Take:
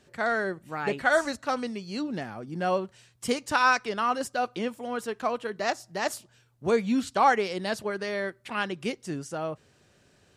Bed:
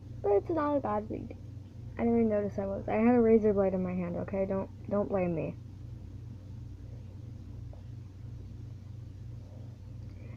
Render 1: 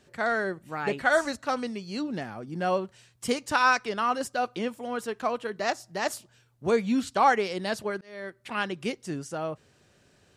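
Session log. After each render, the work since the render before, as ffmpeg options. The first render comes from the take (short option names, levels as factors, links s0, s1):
-filter_complex "[0:a]asplit=2[s0][s1];[s0]atrim=end=8.01,asetpts=PTS-STARTPTS,afade=t=out:st=8.006:d=0.004:c=hsin[s2];[s1]atrim=start=8.01,asetpts=PTS-STARTPTS,afade=t=in:d=0.49[s3];[s2][s3]concat=n=2:v=0:a=1"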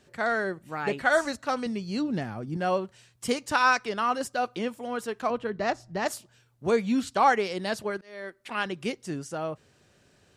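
-filter_complex "[0:a]asettb=1/sr,asplit=3[s0][s1][s2];[s0]atrim=end=1.664[s3];[s1]atrim=start=1.66:end=2.57,asetpts=PTS-STARTPTS,afade=t=in:d=0.004:c=qsin,afade=t=out:st=0.906:d=0.004:c=qsin,lowshelf=f=190:g=10[s4];[s2]atrim=start=2.566[s5];[s3][s4]acrossfade=d=0.004:c1=hsin:c2=qsin[s6];[s6][s5]acrossfade=d=0.004:c1=qsin:c2=hsin,asettb=1/sr,asplit=3[s7][s8][s9];[s7]atrim=end=5.304[s10];[s8]atrim=start=5.3:end=6.06,asetpts=PTS-STARTPTS,afade=t=in:d=0.004:c=qsin,afade=t=out:st=0.756:d=0.004:c=qsin,aemphasis=mode=reproduction:type=bsi[s11];[s9]atrim=start=6.056[s12];[s10][s11]acrossfade=d=0.004:c1=hsin:c2=qsin[s13];[s13][s12]acrossfade=d=0.004:c1=qsin:c2=hsin,asettb=1/sr,asplit=3[s14][s15][s16];[s14]atrim=end=7.974[s17];[s15]atrim=start=7.97:end=8.66,asetpts=PTS-STARTPTS,afade=t=in:d=0.004:c=qsin,afade=t=out:st=0.686:d=0.004:c=qsin,equalizer=f=110:w=1.5:g=-13.5[s18];[s16]atrim=start=8.656[s19];[s17][s18]acrossfade=d=0.004:c1=hsin:c2=qsin[s20];[s20][s19]acrossfade=d=0.004:c1=qsin:c2=hsin"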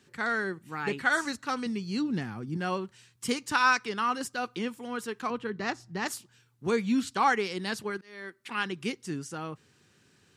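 -af "highpass=100,equalizer=f=620:t=o:w=0.52:g=-14.5"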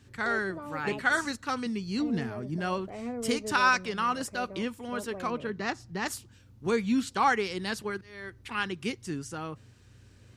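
-filter_complex "[1:a]volume=0.266[s0];[0:a][s0]amix=inputs=2:normalize=0"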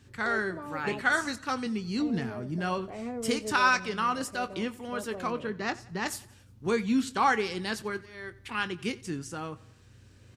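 -filter_complex "[0:a]asplit=2[s0][s1];[s1]adelay=23,volume=0.224[s2];[s0][s2]amix=inputs=2:normalize=0,aecho=1:1:89|178|267|356:0.0841|0.0446|0.0236|0.0125"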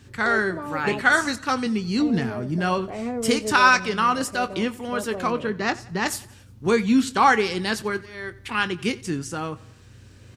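-af "volume=2.37"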